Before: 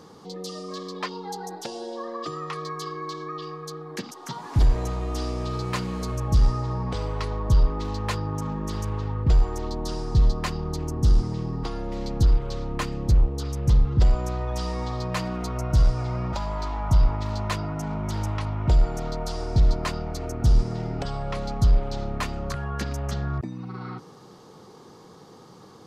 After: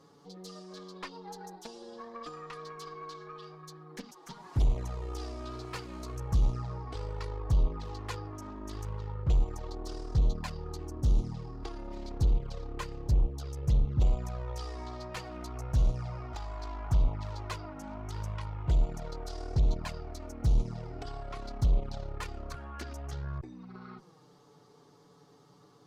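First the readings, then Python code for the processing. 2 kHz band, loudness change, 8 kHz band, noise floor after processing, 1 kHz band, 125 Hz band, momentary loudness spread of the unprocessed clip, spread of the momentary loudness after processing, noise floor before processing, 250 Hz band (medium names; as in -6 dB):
-10.0 dB, -8.0 dB, -10.0 dB, -60 dBFS, -10.5 dB, -8.0 dB, 12 LU, 16 LU, -48 dBFS, -10.5 dB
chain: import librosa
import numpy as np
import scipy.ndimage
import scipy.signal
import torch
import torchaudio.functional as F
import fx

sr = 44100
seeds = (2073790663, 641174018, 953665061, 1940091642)

y = fx.cheby_harmonics(x, sr, harmonics=(7, 8), levels_db=(-33, -25), full_scale_db=-11.0)
y = fx.env_flanger(y, sr, rest_ms=7.6, full_db=-15.0)
y = y * librosa.db_to_amplitude(-7.0)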